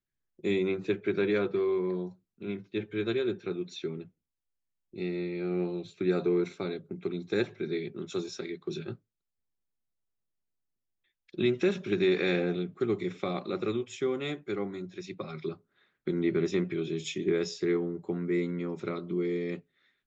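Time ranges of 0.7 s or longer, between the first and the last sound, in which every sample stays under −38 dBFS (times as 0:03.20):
0:04.02–0:04.96
0:08.94–0:11.34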